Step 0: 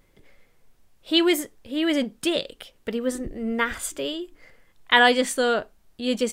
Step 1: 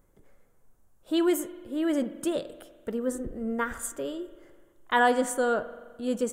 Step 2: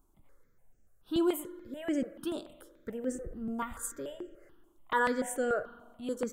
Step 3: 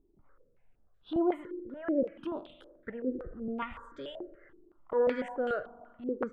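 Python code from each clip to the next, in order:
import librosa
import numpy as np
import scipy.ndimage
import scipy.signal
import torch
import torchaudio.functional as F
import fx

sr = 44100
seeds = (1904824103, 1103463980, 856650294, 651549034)

y1 = fx.band_shelf(x, sr, hz=3200.0, db=-12.0, octaves=1.7)
y1 = fx.rev_spring(y1, sr, rt60_s=1.5, pass_ms=(42,), chirp_ms=60, drr_db=13.5)
y1 = F.gain(torch.from_numpy(y1), -3.5).numpy()
y2 = fx.phaser_held(y1, sr, hz=6.9, low_hz=520.0, high_hz=3800.0)
y2 = F.gain(torch.from_numpy(y2), -2.5).numpy()
y3 = fx.filter_held_lowpass(y2, sr, hz=5.3, low_hz=390.0, high_hz=3500.0)
y3 = F.gain(torch.from_numpy(y3), -2.5).numpy()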